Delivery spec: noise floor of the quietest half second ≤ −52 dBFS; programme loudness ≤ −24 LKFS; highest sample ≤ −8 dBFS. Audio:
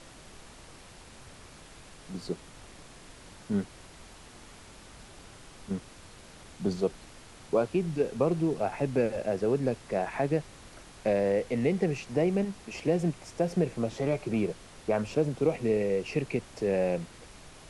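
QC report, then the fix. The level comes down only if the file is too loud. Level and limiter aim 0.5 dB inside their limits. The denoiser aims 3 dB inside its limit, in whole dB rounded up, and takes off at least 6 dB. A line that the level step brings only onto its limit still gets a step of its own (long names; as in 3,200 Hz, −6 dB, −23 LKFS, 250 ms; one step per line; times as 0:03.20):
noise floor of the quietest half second −50 dBFS: out of spec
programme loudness −30.0 LKFS: in spec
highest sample −14.0 dBFS: in spec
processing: broadband denoise 6 dB, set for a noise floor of −50 dBFS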